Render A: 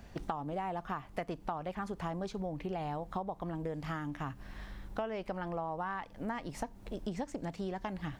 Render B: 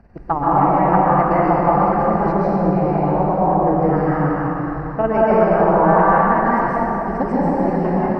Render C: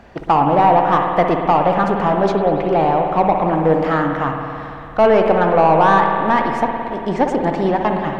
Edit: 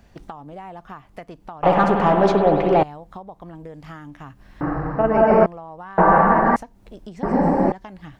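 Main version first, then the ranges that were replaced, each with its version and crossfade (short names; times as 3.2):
A
1.63–2.83 from C
4.61–5.46 from B
5.98–6.56 from B
7.23–7.72 from B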